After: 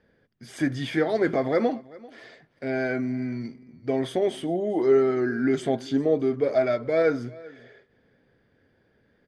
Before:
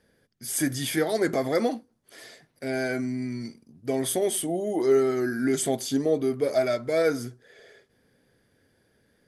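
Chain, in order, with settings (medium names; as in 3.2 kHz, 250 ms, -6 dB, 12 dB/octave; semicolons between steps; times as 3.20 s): low-pass 2.9 kHz 12 dB/octave; delay 391 ms -21.5 dB; trim +1.5 dB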